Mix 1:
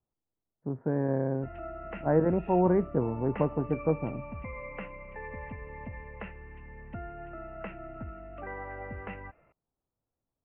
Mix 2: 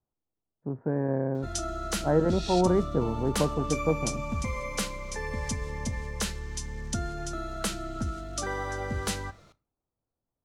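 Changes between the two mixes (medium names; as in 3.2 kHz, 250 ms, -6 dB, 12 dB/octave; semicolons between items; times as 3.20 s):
background: remove rippled Chebyshev low-pass 2.8 kHz, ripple 6 dB; reverb: on, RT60 0.40 s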